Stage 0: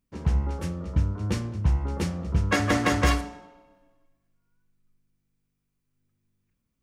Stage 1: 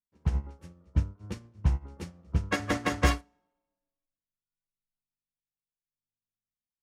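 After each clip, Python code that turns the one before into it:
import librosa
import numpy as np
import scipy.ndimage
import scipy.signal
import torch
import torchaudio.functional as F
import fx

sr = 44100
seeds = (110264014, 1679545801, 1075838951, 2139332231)

y = fx.upward_expand(x, sr, threshold_db=-36.0, expansion=2.5)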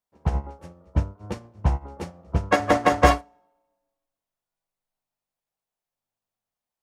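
y = fx.peak_eq(x, sr, hz=710.0, db=13.0, octaves=1.5)
y = y * librosa.db_to_amplitude(3.0)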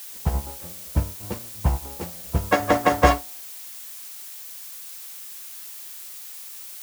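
y = fx.dmg_noise_colour(x, sr, seeds[0], colour='blue', level_db=-39.0)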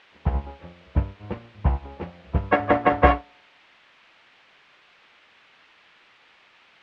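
y = scipy.signal.sosfilt(scipy.signal.butter(4, 2800.0, 'lowpass', fs=sr, output='sos'), x)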